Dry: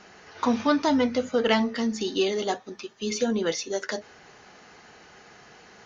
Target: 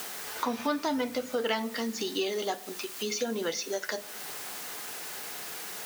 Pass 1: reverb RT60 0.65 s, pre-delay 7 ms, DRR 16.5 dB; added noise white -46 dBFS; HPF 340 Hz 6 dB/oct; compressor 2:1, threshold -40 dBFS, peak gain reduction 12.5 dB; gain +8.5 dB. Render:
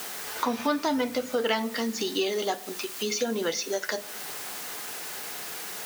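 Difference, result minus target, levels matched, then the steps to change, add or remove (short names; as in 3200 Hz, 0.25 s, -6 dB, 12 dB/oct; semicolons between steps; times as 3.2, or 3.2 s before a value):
compressor: peak gain reduction -3 dB
change: compressor 2:1, threshold -46.5 dBFS, peak gain reduction 15.5 dB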